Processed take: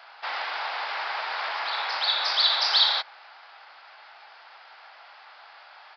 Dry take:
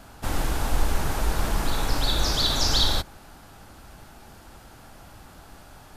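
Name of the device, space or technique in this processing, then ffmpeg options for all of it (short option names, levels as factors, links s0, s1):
musical greeting card: -af "aresample=11025,aresample=44100,highpass=f=740:w=0.5412,highpass=f=740:w=1.3066,equalizer=f=2100:t=o:w=0.47:g=5,volume=1.41"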